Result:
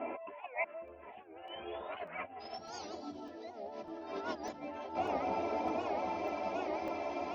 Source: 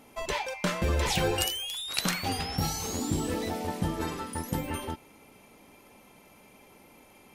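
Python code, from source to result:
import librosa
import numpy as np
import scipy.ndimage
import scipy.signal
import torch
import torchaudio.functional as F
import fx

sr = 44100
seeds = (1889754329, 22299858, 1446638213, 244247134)

y = fx.peak_eq(x, sr, hz=650.0, db=15.0, octaves=1.1)
y = fx.echo_bbd(y, sr, ms=387, stages=4096, feedback_pct=84, wet_db=-21.0)
y = fx.over_compress(y, sr, threshold_db=-40.0, ratio=-1.0)
y = fx.steep_lowpass(y, sr, hz=fx.steps((0.0, 2800.0), (2.39, 5900.0)), slope=72)
y = fx.chorus_voices(y, sr, voices=4, hz=0.33, base_ms=12, depth_ms=3.0, mix_pct=50)
y = scipy.signal.sosfilt(scipy.signal.butter(2, 170.0, 'highpass', fs=sr, output='sos'), y)
y = y + 0.58 * np.pad(y, (int(3.0 * sr / 1000.0), 0))[:len(y)]
y = fx.buffer_crackle(y, sr, first_s=0.88, period_s=0.6, block=64, kind='zero')
y = fx.record_warp(y, sr, rpm=78.0, depth_cents=160.0)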